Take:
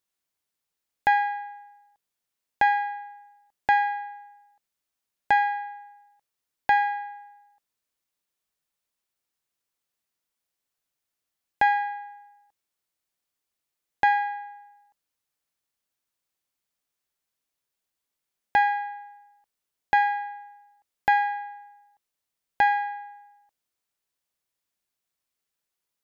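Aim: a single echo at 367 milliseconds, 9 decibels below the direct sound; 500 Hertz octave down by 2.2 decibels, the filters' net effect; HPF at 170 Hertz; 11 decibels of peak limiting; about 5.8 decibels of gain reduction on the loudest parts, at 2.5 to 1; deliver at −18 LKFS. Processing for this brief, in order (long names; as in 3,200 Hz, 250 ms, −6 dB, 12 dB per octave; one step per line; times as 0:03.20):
high-pass filter 170 Hz
parametric band 500 Hz −3 dB
downward compressor 2.5 to 1, threshold −25 dBFS
brickwall limiter −24 dBFS
single-tap delay 367 ms −9 dB
level +17 dB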